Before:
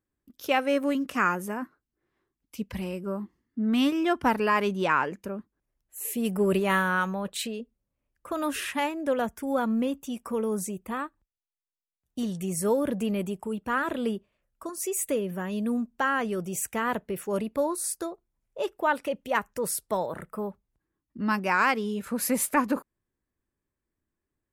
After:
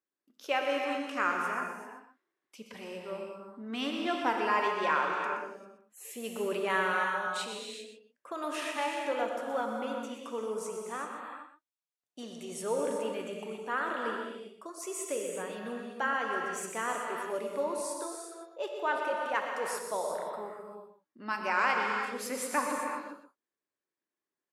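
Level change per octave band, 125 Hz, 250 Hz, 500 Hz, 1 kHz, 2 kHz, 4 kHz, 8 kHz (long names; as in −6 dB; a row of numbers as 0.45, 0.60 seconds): −16.0, −12.0, −4.5, −2.5, −2.5, −2.5, −7.0 decibels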